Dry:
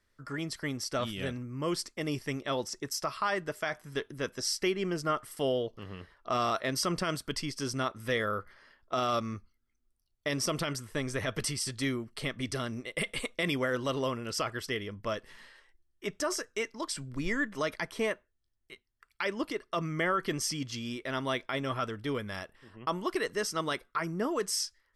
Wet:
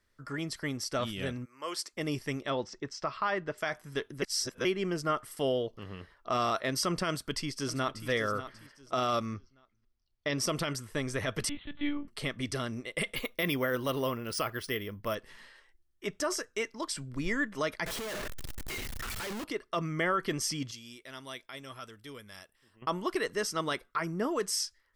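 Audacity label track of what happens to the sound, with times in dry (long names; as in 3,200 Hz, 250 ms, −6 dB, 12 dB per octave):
1.440000	1.920000	high-pass filter 1,100 Hz → 390 Hz
2.500000	3.580000	Gaussian smoothing sigma 1.7 samples
4.220000	4.650000	reverse
7.090000	8.070000	delay throw 590 ms, feedback 30%, level −12 dB
9.340000	10.380000	Butterworth low-pass 5,800 Hz
11.490000	12.080000	one-pitch LPC vocoder at 8 kHz 290 Hz
13.150000	15.150000	bad sample-rate conversion rate divided by 3×, down filtered, up hold
17.860000	19.440000	sign of each sample alone
20.710000	22.820000	first-order pre-emphasis coefficient 0.8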